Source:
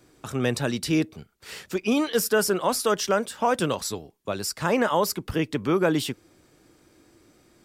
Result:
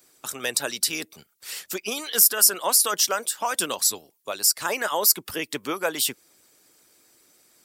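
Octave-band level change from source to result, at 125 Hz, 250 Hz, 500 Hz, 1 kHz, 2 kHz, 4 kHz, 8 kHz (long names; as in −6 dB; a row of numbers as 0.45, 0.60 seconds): −17.0, −12.0, −6.5, −2.0, +0.5, +6.0, +11.5 decibels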